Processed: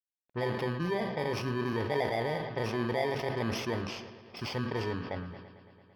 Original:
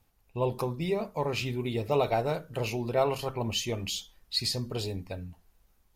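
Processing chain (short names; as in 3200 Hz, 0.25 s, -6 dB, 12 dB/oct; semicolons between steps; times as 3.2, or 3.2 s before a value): FFT order left unsorted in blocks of 32 samples; low-pass opened by the level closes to 530 Hz, open at -28 dBFS; HPF 250 Hz 6 dB/oct; in parallel at 0 dB: negative-ratio compressor -35 dBFS; on the sum: requantised 10-bit, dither none; air absorption 290 m; analogue delay 0.112 s, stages 4096, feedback 79%, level -17.5 dB; sustainer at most 47 dB/s; gain -2.5 dB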